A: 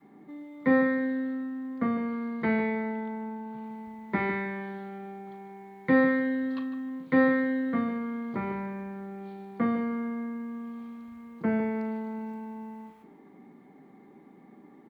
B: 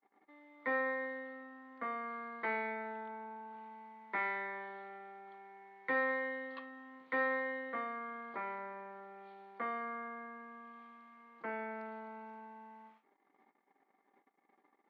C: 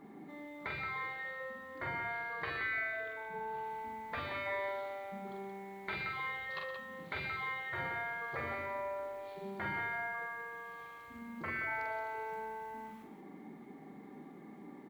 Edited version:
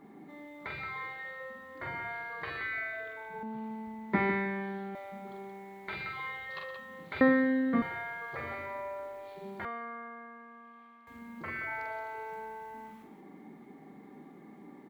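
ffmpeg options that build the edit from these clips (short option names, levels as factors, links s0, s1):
-filter_complex "[0:a]asplit=2[s0][s1];[2:a]asplit=4[s2][s3][s4][s5];[s2]atrim=end=3.432[s6];[s0]atrim=start=3.428:end=4.952[s7];[s3]atrim=start=4.948:end=7.212[s8];[s1]atrim=start=7.208:end=7.822[s9];[s4]atrim=start=7.818:end=9.652[s10];[1:a]atrim=start=9.648:end=11.072[s11];[s5]atrim=start=11.068[s12];[s6][s7]acrossfade=d=0.004:c1=hsin:c2=hsin[s13];[s13][s8]acrossfade=d=0.004:c1=hsin:c2=hsin[s14];[s14][s9]acrossfade=d=0.004:c1=hsin:c2=hsin[s15];[s15][s10]acrossfade=d=0.004:c1=hsin:c2=hsin[s16];[s16][s11]acrossfade=d=0.004:c1=hsin:c2=hsin[s17];[s17][s12]acrossfade=d=0.004:c1=hsin:c2=hsin"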